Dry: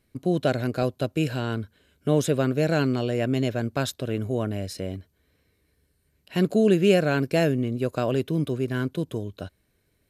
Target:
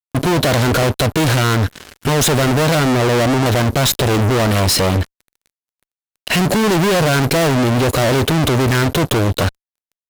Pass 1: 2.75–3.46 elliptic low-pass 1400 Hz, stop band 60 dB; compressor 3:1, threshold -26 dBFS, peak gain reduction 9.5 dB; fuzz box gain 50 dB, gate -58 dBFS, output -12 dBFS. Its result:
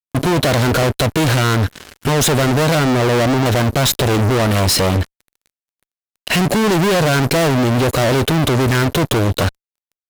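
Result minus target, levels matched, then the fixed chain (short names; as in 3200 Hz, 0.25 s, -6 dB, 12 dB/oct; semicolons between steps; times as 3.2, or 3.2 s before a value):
compressor: peak gain reduction +4.5 dB
2.75–3.46 elliptic low-pass 1400 Hz, stop band 60 dB; compressor 3:1, threshold -19 dBFS, peak gain reduction 5 dB; fuzz box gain 50 dB, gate -58 dBFS, output -12 dBFS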